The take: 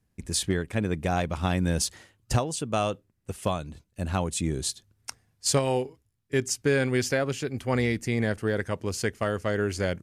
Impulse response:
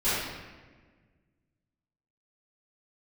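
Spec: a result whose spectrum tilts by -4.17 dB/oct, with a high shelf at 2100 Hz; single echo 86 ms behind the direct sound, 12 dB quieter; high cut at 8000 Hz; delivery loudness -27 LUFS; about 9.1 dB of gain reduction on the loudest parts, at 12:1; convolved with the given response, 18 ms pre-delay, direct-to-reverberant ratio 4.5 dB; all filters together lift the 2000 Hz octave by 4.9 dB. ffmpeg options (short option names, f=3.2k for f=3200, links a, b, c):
-filter_complex "[0:a]lowpass=8k,equalizer=f=2k:t=o:g=4.5,highshelf=f=2.1k:g=3,acompressor=threshold=-28dB:ratio=12,aecho=1:1:86:0.251,asplit=2[a][b];[1:a]atrim=start_sample=2205,adelay=18[c];[b][c]afir=irnorm=-1:irlink=0,volume=-17.5dB[d];[a][d]amix=inputs=2:normalize=0,volume=5.5dB"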